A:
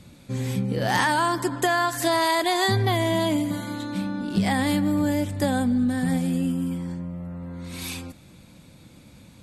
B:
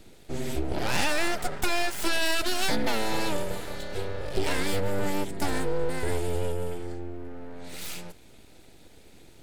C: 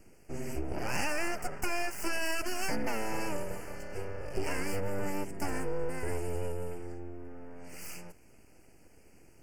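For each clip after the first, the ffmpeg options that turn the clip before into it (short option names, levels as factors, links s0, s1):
-af "aeval=exprs='abs(val(0))':c=same,bandreject=f=1100:w=6.3,volume=0.891"
-af "asuperstop=centerf=3700:order=8:qfactor=2.1,volume=0.501"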